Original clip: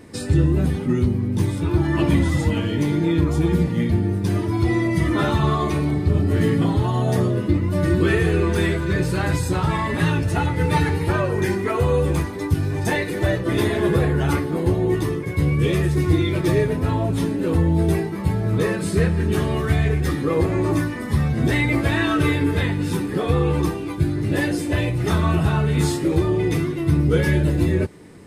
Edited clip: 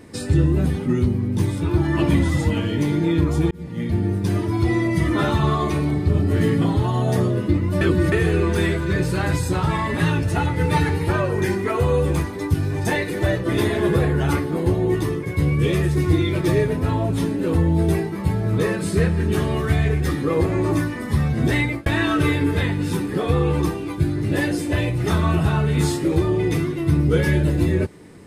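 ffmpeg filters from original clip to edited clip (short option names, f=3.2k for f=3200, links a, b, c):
-filter_complex "[0:a]asplit=5[a][b][c][d][e];[a]atrim=end=3.51,asetpts=PTS-STARTPTS,afade=t=out:st=3.506:d=0.004:c=hsin[f];[b]atrim=start=3.51:end=7.812,asetpts=PTS-STARTPTS,afade=t=in:d=0.54[g];[c]atrim=start=7.808:end=8.122,asetpts=PTS-STARTPTS,areverse[h];[d]atrim=start=8.118:end=21.86,asetpts=PTS-STARTPTS,afade=t=out:st=13.492:d=0.25[i];[e]atrim=start=21.86,asetpts=PTS-STARTPTS,afade=t=in:d=0.004:c=hsin[j];[f][g]concat=n=2:v=0:a=1[k];[k][h]acrossfade=d=0.004:c1=hsin:c2=hsin[l];[i][j]concat=n=2:v=0:a=1[m];[l][m]acrossfade=d=0.004:c1=hsin:c2=hsin"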